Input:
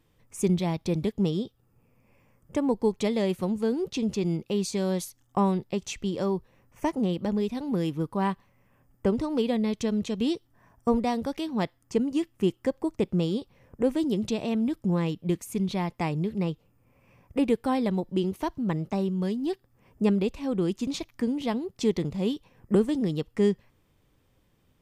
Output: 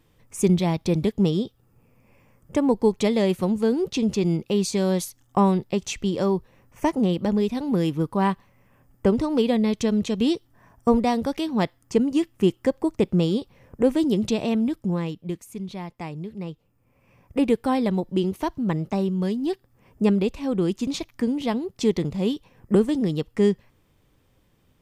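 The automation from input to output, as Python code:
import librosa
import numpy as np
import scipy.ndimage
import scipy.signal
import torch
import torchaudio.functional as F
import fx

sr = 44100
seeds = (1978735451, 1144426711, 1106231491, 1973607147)

y = fx.gain(x, sr, db=fx.line((14.47, 5.0), (15.52, -5.5), (16.39, -5.5), (17.43, 3.5)))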